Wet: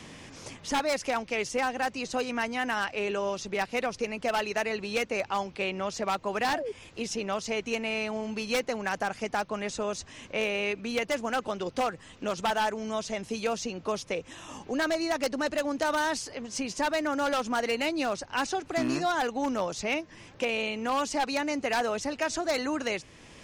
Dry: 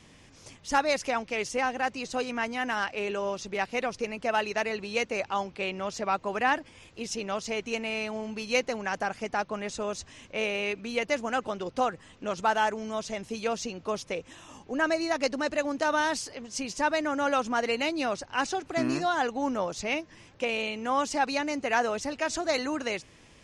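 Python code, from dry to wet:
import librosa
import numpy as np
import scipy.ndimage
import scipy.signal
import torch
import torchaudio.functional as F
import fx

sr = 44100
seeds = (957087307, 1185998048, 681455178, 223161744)

y = fx.spec_paint(x, sr, seeds[0], shape='fall', start_s=6.47, length_s=0.25, low_hz=390.0, high_hz=1000.0, level_db=-34.0)
y = 10.0 ** (-20.0 / 20.0) * (np.abs((y / 10.0 ** (-20.0 / 20.0) + 3.0) % 4.0 - 2.0) - 1.0)
y = fx.band_squash(y, sr, depth_pct=40)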